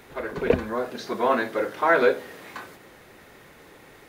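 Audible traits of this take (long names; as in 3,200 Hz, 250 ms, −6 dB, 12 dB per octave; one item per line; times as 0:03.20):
background noise floor −51 dBFS
spectral slope −3.5 dB per octave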